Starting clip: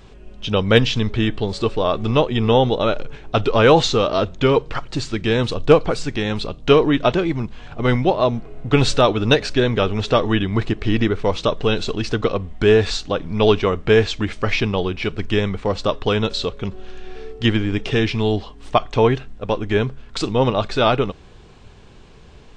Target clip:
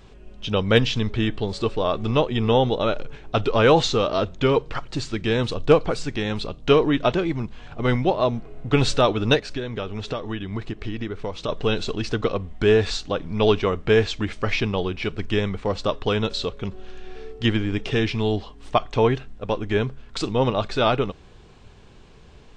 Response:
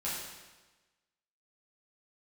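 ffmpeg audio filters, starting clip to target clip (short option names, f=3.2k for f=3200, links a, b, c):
-filter_complex "[0:a]asplit=3[a][b][c];[a]afade=t=out:st=9.39:d=0.02[d];[b]acompressor=threshold=-22dB:ratio=6,afade=t=in:st=9.39:d=0.02,afade=t=out:st=11.48:d=0.02[e];[c]afade=t=in:st=11.48:d=0.02[f];[d][e][f]amix=inputs=3:normalize=0,volume=-3.5dB"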